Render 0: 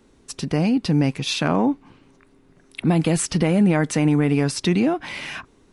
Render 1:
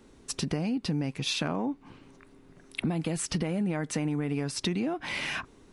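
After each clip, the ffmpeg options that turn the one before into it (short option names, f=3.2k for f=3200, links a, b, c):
-af "acompressor=threshold=-27dB:ratio=6"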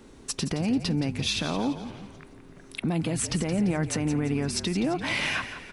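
-filter_complex "[0:a]alimiter=limit=-23dB:level=0:latency=1:release=217,asplit=2[a][b];[b]asplit=5[c][d][e][f][g];[c]adelay=171,afreqshift=-44,volume=-11dB[h];[d]adelay=342,afreqshift=-88,volume=-17.7dB[i];[e]adelay=513,afreqshift=-132,volume=-24.5dB[j];[f]adelay=684,afreqshift=-176,volume=-31.2dB[k];[g]adelay=855,afreqshift=-220,volume=-38dB[l];[h][i][j][k][l]amix=inputs=5:normalize=0[m];[a][m]amix=inputs=2:normalize=0,volume=5.5dB"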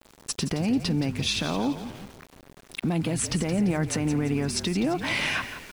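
-af "aeval=exprs='val(0)*gte(abs(val(0)),0.00631)':c=same,volume=1dB"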